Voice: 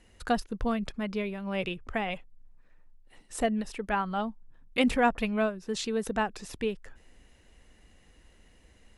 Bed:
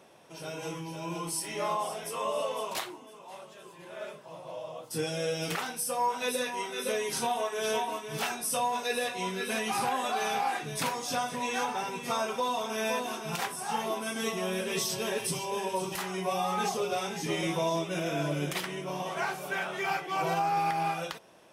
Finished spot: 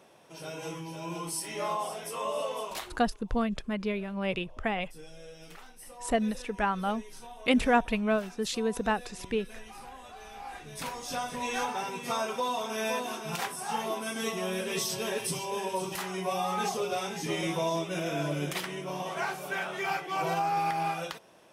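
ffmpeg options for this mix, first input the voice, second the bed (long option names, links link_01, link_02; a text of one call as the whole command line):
ffmpeg -i stem1.wav -i stem2.wav -filter_complex "[0:a]adelay=2700,volume=0.5dB[link_01];[1:a]volume=15.5dB,afade=type=out:start_time=2.58:duration=0.68:silence=0.158489,afade=type=in:start_time=10.32:duration=1.2:silence=0.149624[link_02];[link_01][link_02]amix=inputs=2:normalize=0" out.wav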